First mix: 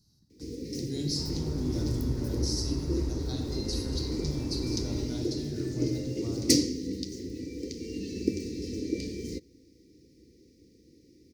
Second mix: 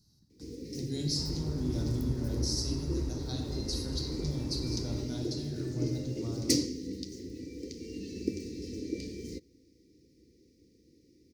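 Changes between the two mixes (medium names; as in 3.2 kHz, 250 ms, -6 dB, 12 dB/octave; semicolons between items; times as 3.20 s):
first sound -4.5 dB; second sound: send -7.5 dB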